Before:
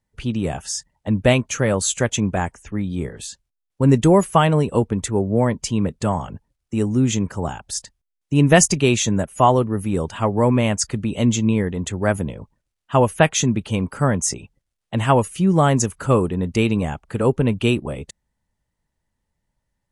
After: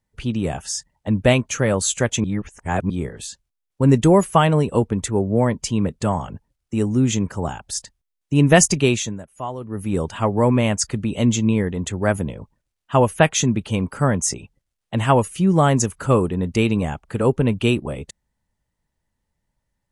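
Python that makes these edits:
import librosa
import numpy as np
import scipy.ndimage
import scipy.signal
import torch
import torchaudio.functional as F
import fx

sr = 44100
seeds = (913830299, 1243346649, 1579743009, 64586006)

y = fx.edit(x, sr, fx.reverse_span(start_s=2.24, length_s=0.66),
    fx.fade_down_up(start_s=8.85, length_s=1.09, db=-14.5, fade_s=0.34), tone=tone)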